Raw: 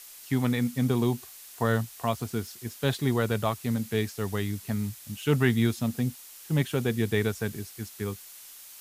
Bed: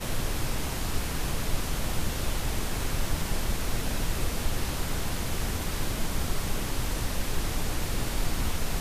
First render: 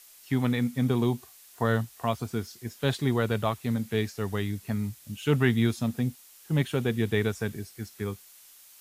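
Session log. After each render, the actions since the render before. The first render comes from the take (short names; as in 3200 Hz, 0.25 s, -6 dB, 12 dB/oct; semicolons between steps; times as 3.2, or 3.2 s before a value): noise print and reduce 6 dB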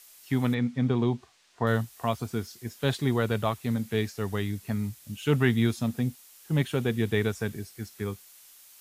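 0.54–1.67 air absorption 120 m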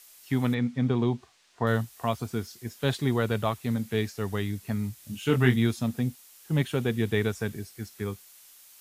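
4.96–5.56 doubler 24 ms -5 dB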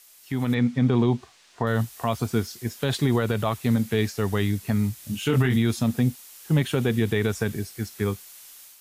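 limiter -19 dBFS, peak gain reduction 11 dB; AGC gain up to 7 dB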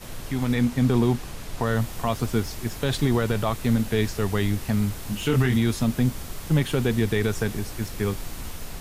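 add bed -7 dB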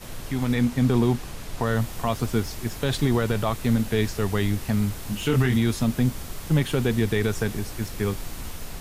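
nothing audible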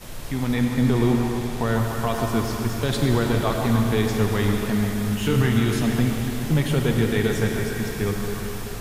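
delay with a stepping band-pass 0.144 s, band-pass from 740 Hz, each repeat 0.7 oct, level -4 dB; digital reverb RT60 4 s, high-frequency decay 0.95×, pre-delay 25 ms, DRR 2 dB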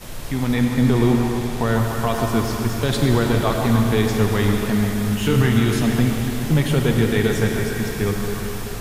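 gain +3 dB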